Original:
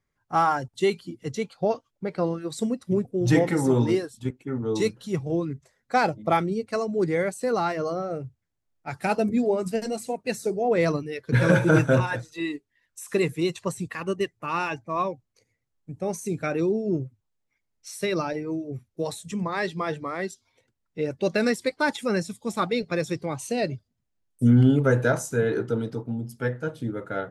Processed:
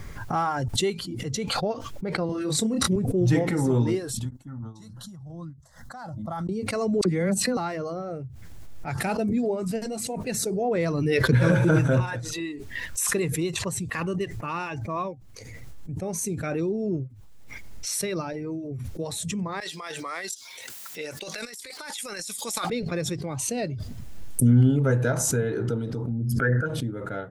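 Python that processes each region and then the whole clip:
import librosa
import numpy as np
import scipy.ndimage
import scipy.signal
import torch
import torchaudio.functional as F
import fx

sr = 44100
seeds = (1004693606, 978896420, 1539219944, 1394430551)

y = fx.chain(x, sr, fx.highpass(hz=53.0, slope=12),
    fx.doubler(ms=27.0, db=-4.0),
    fx.band_squash(depth_pct=40), at=(2.29, 2.96))
y = fx.chain(y, sr, fx.fixed_phaser(hz=1000.0, stages=4),
    fx.tremolo_db(hz=2.5, depth_db=32), at=(4.25, 6.49))
y = fx.chain(y, sr, fx.peak_eq(hz=210.0, db=14.5, octaves=0.5),
    fx.dispersion(late='lows', ms=43.0, hz=1500.0), at=(7.01, 7.57))
y = fx.chain(y, sr, fx.highpass(hz=490.0, slope=6),
    fx.tilt_eq(slope=4.0),
    fx.over_compress(threshold_db=-32.0, ratio=-0.5), at=(19.6, 22.7))
y = fx.chain(y, sr, fx.envelope_sharpen(power=1.5),
    fx.peak_eq(hz=1500.0, db=14.5, octaves=0.89),
    fx.sustainer(db_per_s=29.0), at=(26.09, 26.66))
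y = fx.low_shelf(y, sr, hz=130.0, db=10.5)
y = fx.pre_swell(y, sr, db_per_s=22.0)
y = F.gain(torch.from_numpy(y), -5.0).numpy()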